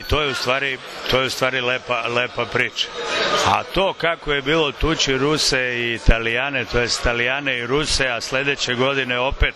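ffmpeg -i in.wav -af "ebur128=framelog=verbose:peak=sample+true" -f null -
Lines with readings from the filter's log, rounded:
Integrated loudness:
  I:         -19.4 LUFS
  Threshold: -29.4 LUFS
Loudness range:
  LRA:         1.3 LU
  Threshold: -39.3 LUFS
  LRA low:   -20.0 LUFS
  LRA high:  -18.7 LUFS
Sample peak:
  Peak:       -2.8 dBFS
True peak:
  Peak:       -2.7 dBFS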